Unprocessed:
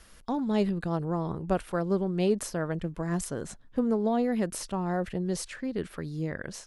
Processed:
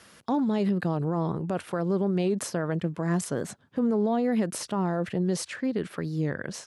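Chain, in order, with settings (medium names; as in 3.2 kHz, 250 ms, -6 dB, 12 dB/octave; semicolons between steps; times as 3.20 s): high-pass 100 Hz 24 dB/octave; treble shelf 7.5 kHz -5.5 dB; peak limiter -23.5 dBFS, peak gain reduction 10 dB; warped record 45 rpm, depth 100 cents; trim +5 dB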